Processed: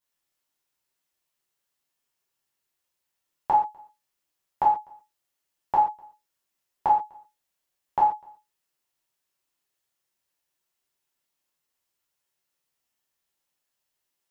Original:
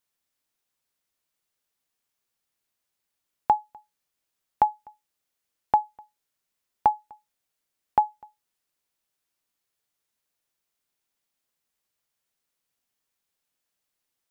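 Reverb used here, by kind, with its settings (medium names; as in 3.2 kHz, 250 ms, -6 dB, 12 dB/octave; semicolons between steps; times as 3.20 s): gated-style reverb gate 160 ms falling, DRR -6.5 dB; trim -6.5 dB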